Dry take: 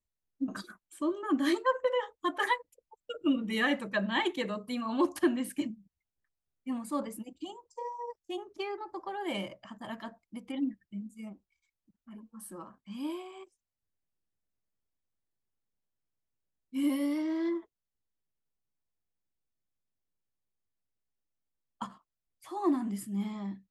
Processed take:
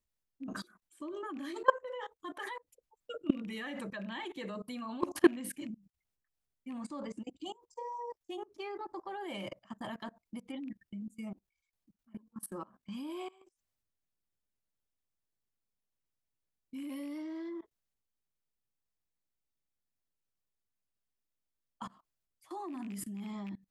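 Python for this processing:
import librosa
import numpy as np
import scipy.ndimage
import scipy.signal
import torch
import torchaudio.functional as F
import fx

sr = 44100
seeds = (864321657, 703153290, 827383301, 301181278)

y = fx.rattle_buzz(x, sr, strikes_db=-35.0, level_db=-35.0)
y = fx.steep_lowpass(y, sr, hz=8000.0, slope=36, at=(6.8, 7.39))
y = fx.level_steps(y, sr, step_db=23)
y = y * 10.0 ** (5.5 / 20.0)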